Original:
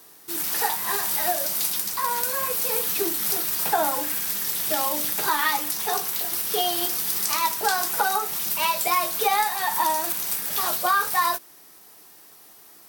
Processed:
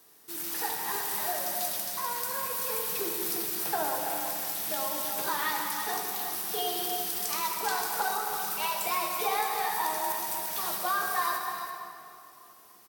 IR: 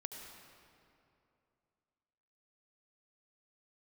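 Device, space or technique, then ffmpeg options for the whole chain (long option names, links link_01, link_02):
cave: -filter_complex "[0:a]aecho=1:1:332:0.355[link_01];[1:a]atrim=start_sample=2205[link_02];[link_01][link_02]afir=irnorm=-1:irlink=0,volume=-4.5dB"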